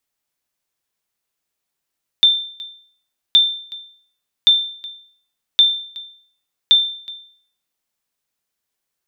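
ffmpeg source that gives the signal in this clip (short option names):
-f lavfi -i "aevalsrc='0.596*(sin(2*PI*3570*mod(t,1.12))*exp(-6.91*mod(t,1.12)/0.55)+0.0841*sin(2*PI*3570*max(mod(t,1.12)-0.37,0))*exp(-6.91*max(mod(t,1.12)-0.37,0)/0.55))':d=5.6:s=44100"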